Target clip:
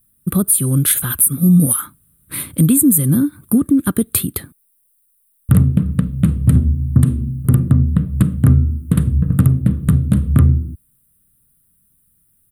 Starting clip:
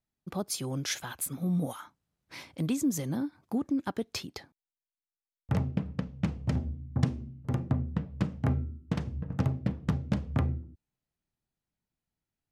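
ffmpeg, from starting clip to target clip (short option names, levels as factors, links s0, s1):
-filter_complex "[0:a]firequalizer=gain_entry='entry(150,0);entry(810,-23);entry(1200,-7);entry(2200,-14);entry(3700,-9);entry(5600,-27);entry(9000,14)':delay=0.05:min_phase=1,asplit=2[s0][s1];[s1]acompressor=threshold=0.0141:ratio=6,volume=1.41[s2];[s0][s2]amix=inputs=2:normalize=0,alimiter=level_in=7.08:limit=0.891:release=50:level=0:latency=1,volume=0.891"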